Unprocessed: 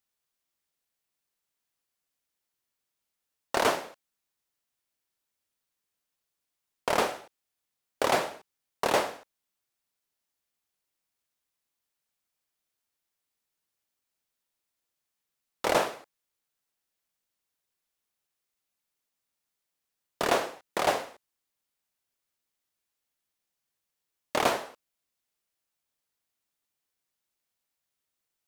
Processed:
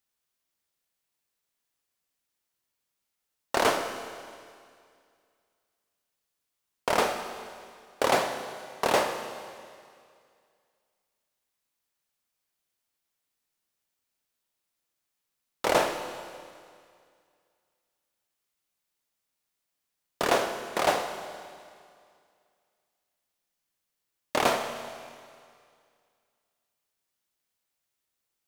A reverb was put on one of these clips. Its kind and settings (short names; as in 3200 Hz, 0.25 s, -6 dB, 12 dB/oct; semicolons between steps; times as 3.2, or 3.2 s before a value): Schroeder reverb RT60 2.2 s, combs from 26 ms, DRR 7 dB; gain +1 dB